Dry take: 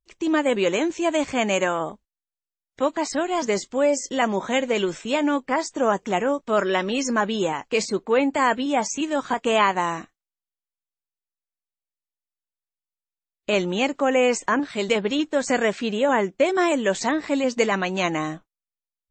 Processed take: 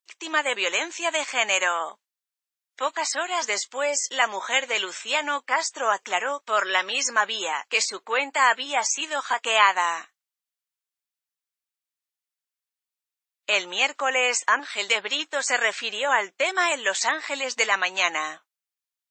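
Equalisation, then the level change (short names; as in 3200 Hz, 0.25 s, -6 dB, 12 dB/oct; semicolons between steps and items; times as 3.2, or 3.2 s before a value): HPF 1100 Hz 12 dB/oct; +5.0 dB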